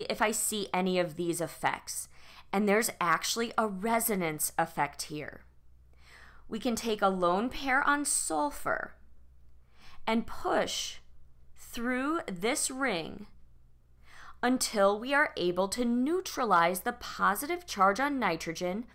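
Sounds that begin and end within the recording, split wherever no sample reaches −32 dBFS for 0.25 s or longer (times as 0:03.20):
0:02.54–0:05.29
0:06.52–0:08.86
0:10.07–0:10.91
0:11.73–0:13.17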